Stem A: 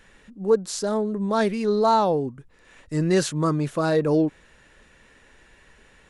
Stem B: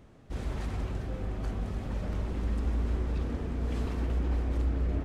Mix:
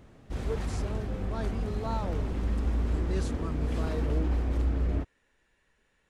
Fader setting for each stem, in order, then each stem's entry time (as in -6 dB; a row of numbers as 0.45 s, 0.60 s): -17.0 dB, +1.5 dB; 0.00 s, 0.00 s